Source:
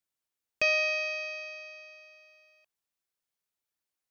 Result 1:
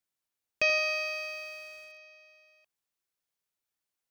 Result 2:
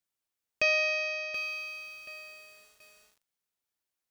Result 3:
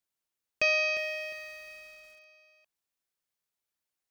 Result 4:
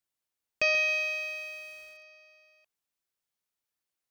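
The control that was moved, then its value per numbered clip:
bit-crushed delay, time: 83 ms, 729 ms, 354 ms, 135 ms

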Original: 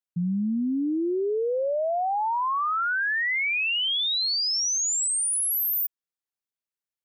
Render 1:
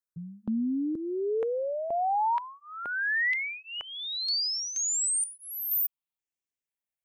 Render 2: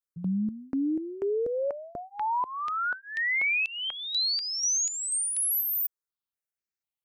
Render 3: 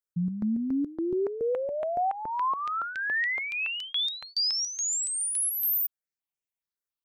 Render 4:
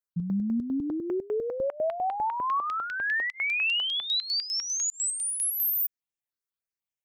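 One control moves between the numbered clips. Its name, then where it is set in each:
stepped phaser, rate: 2.1 Hz, 4.1 Hz, 7.1 Hz, 10 Hz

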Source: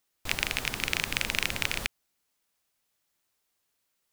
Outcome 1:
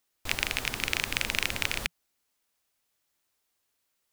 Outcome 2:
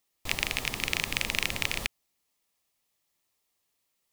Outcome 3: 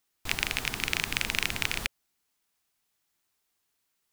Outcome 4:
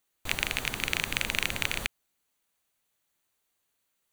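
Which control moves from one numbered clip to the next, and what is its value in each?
band-stop, frequency: 170 Hz, 1.5 kHz, 550 Hz, 5.2 kHz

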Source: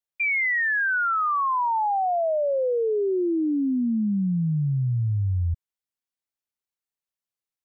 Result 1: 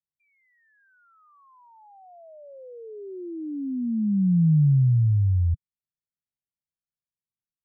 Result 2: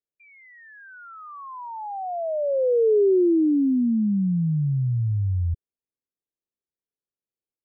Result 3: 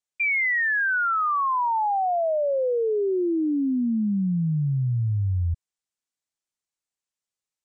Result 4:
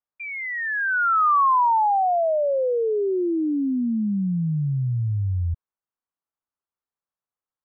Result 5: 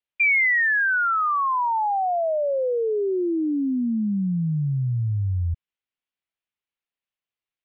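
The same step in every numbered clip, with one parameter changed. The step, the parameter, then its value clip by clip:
resonant low-pass, frequency: 160 Hz, 430 Hz, 7.8 kHz, 1.2 kHz, 2.9 kHz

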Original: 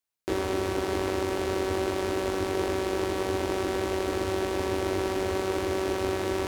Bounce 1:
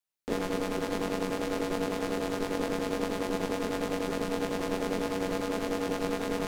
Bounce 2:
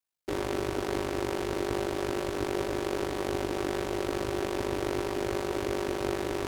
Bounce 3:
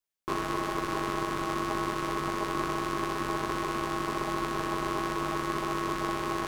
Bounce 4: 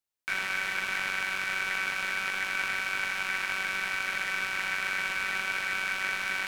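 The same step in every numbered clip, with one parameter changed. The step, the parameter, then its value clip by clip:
ring modulator, frequency: 100 Hz, 25 Hz, 720 Hz, 1.9 kHz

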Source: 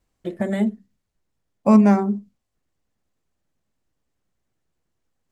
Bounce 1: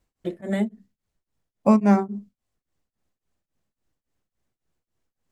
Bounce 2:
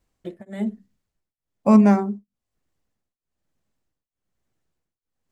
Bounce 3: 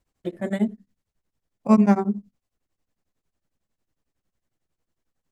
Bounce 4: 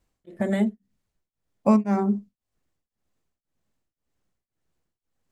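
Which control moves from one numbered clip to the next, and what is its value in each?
tremolo of two beating tones, nulls at: 3.6 Hz, 1.1 Hz, 11 Hz, 1.9 Hz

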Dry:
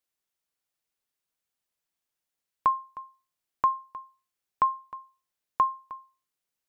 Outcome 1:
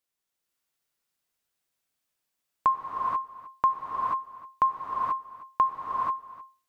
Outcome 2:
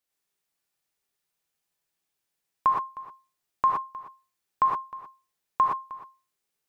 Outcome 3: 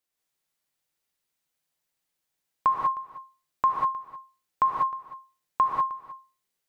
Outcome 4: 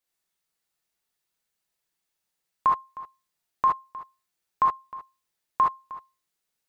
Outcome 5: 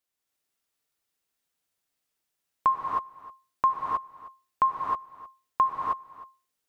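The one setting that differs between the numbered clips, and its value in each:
gated-style reverb, gate: 510 ms, 140 ms, 220 ms, 90 ms, 340 ms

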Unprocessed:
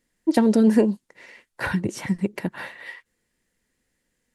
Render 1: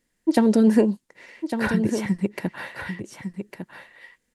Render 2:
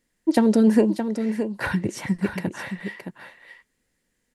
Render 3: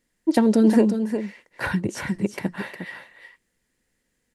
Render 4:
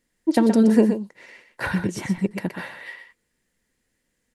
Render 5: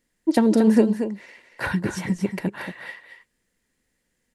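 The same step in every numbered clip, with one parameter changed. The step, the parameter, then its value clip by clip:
delay, time: 1153 ms, 619 ms, 358 ms, 123 ms, 231 ms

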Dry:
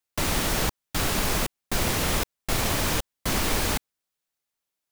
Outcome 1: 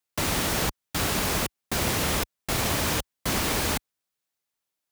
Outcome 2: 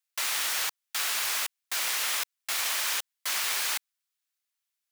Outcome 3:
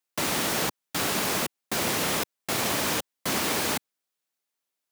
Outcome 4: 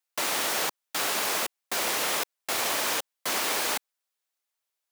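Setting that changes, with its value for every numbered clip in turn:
high-pass, cutoff frequency: 52 Hz, 1.4 kHz, 180 Hz, 490 Hz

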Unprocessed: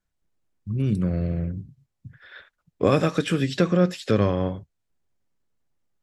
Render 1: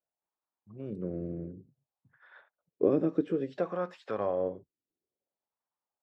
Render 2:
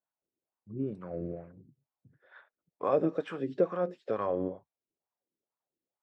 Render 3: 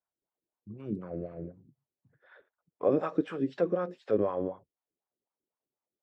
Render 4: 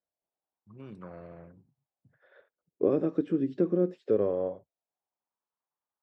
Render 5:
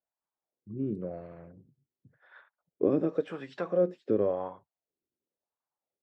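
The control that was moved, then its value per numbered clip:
wah-wah, rate: 0.57 Hz, 2.2 Hz, 4 Hz, 0.22 Hz, 0.93 Hz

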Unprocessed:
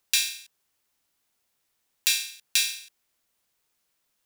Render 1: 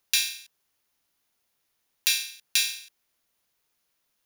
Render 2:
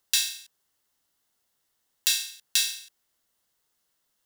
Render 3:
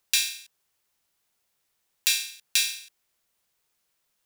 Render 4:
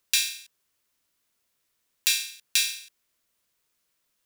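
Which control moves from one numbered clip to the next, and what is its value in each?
band-stop, frequency: 7.9 kHz, 2.4 kHz, 270 Hz, 800 Hz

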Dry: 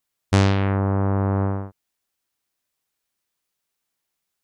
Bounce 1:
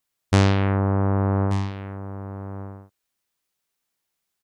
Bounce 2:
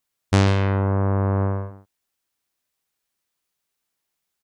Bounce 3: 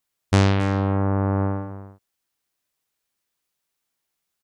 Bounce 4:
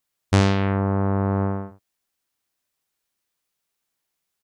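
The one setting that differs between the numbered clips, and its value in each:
delay, time: 1183 ms, 141 ms, 272 ms, 76 ms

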